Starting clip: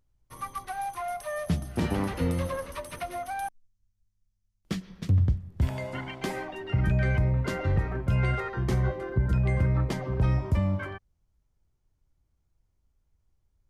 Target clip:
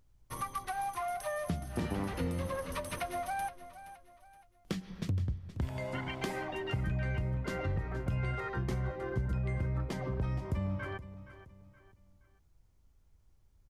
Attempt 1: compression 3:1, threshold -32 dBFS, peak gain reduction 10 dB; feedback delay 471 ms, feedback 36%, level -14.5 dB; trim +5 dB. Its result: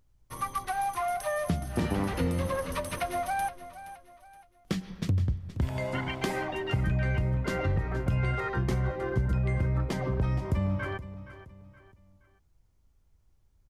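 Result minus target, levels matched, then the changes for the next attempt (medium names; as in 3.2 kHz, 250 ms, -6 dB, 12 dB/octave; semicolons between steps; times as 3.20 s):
compression: peak gain reduction -6 dB
change: compression 3:1, threshold -41 dBFS, peak gain reduction 16 dB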